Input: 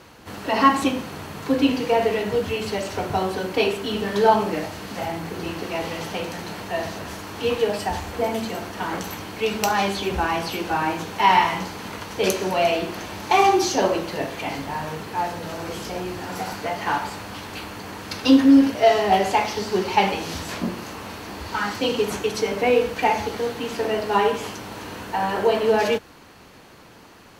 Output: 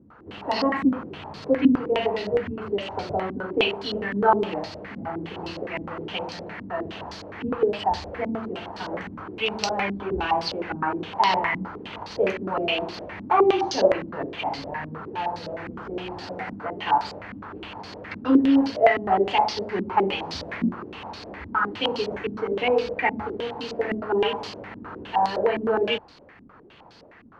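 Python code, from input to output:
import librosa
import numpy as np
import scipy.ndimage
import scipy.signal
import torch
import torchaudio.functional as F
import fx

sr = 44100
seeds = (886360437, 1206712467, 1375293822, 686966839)

y = fx.filter_held_lowpass(x, sr, hz=9.7, low_hz=250.0, high_hz=4600.0)
y = y * 10.0 ** (-6.0 / 20.0)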